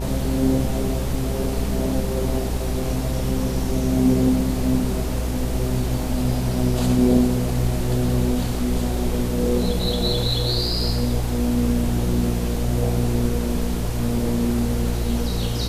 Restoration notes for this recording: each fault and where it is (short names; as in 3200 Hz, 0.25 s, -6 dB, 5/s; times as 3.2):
buzz 60 Hz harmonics 16 -26 dBFS